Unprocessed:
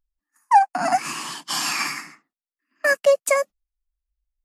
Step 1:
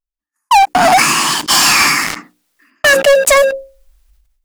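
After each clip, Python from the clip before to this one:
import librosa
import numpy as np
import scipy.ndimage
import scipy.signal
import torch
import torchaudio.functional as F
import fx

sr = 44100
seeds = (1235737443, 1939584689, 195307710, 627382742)

y = fx.hum_notches(x, sr, base_hz=60, count=9)
y = fx.leveller(y, sr, passes=5)
y = fx.sustainer(y, sr, db_per_s=56.0)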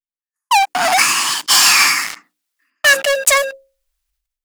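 y = fx.tilt_shelf(x, sr, db=-7.0, hz=670.0)
y = fx.upward_expand(y, sr, threshold_db=-27.0, expansion=1.5)
y = y * librosa.db_to_amplitude(-5.5)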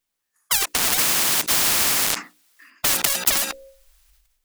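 y = fx.spectral_comp(x, sr, ratio=10.0)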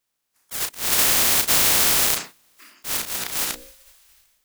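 y = fx.spec_clip(x, sr, under_db=22)
y = fx.auto_swell(y, sr, attack_ms=192.0)
y = fx.doubler(y, sr, ms=34.0, db=-7)
y = y * librosa.db_to_amplitude(1.5)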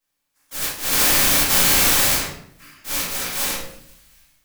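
y = fx.room_shoebox(x, sr, seeds[0], volume_m3=130.0, walls='mixed', distance_m=2.2)
y = y * librosa.db_to_amplitude(-5.5)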